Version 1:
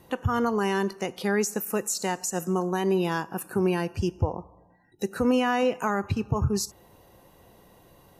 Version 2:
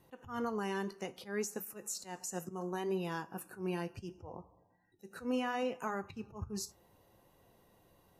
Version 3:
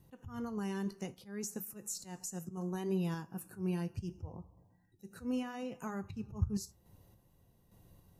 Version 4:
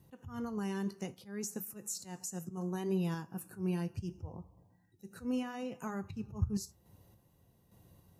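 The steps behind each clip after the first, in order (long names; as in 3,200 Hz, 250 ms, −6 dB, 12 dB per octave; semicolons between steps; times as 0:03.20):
volume swells 135 ms; flanger 0.67 Hz, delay 6.9 ms, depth 5.4 ms, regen −63%; level −7 dB
bass and treble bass +15 dB, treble +7 dB; sample-and-hold tremolo; level −4 dB
high-pass filter 54 Hz; level +1 dB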